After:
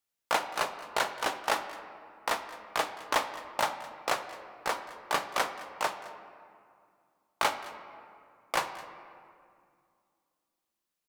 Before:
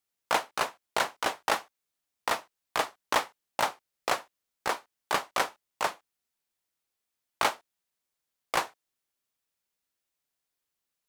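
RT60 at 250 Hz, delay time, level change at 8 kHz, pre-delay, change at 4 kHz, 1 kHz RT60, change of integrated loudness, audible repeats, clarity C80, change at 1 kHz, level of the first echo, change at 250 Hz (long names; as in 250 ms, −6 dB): 3.1 s, 214 ms, −1.5 dB, 3 ms, −1.0 dB, 2.2 s, −1.0 dB, 1, 11.0 dB, −1.0 dB, −19.0 dB, −1.5 dB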